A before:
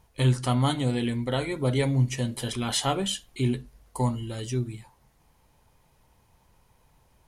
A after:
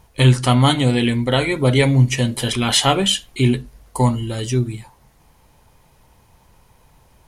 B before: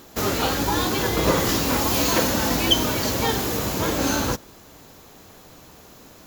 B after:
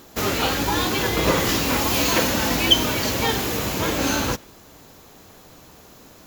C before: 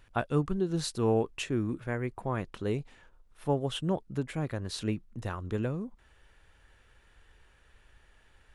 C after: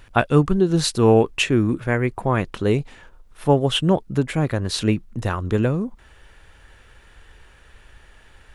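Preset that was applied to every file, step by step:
dynamic EQ 2500 Hz, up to +5 dB, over -43 dBFS, Q 1.3; normalise peaks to -2 dBFS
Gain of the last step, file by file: +9.5, 0.0, +12.0 dB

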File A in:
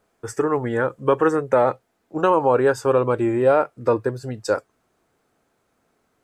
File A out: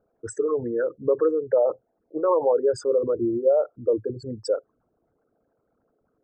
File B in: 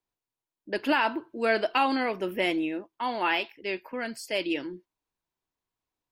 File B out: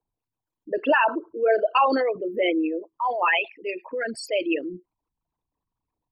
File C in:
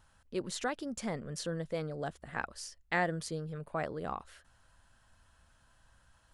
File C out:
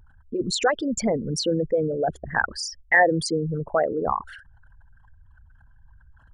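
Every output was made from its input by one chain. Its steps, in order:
formant sharpening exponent 3; notch 380 Hz, Q 12; match loudness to -24 LUFS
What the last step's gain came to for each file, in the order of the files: -2.5, +5.0, +14.0 dB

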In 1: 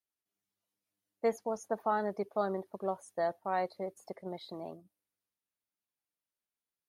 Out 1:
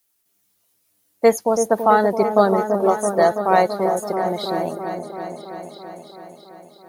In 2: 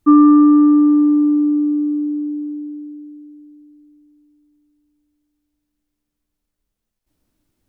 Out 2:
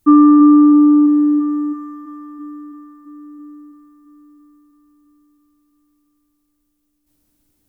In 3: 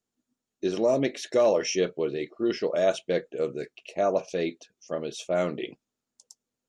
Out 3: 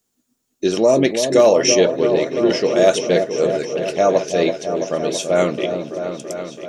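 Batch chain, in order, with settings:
high shelf 6200 Hz +11.5 dB; repeats that get brighter 0.332 s, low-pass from 750 Hz, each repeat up 1 oct, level -6 dB; normalise peaks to -1.5 dBFS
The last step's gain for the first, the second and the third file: +16.0, +0.5, +9.0 dB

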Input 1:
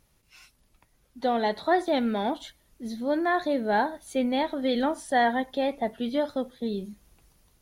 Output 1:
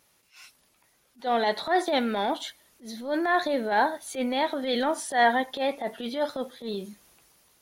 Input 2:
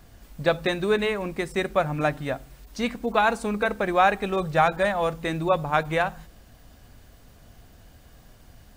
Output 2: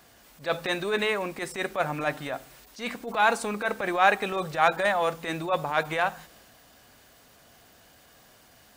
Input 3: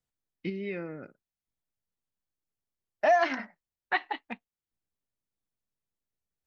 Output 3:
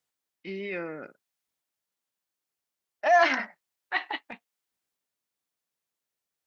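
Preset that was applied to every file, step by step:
HPF 580 Hz 6 dB/oct; transient shaper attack -11 dB, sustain +2 dB; match loudness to -27 LUFS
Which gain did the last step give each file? +5.5, +3.0, +7.0 dB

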